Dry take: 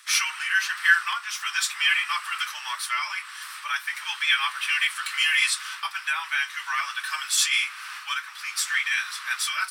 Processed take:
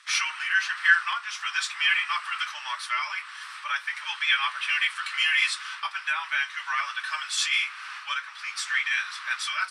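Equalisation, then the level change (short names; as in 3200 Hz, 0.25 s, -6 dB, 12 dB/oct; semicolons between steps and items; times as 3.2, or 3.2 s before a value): air absorption 97 m; bell 550 Hz +7 dB 0.31 oct; bell 9600 Hz +4 dB 0.34 oct; 0.0 dB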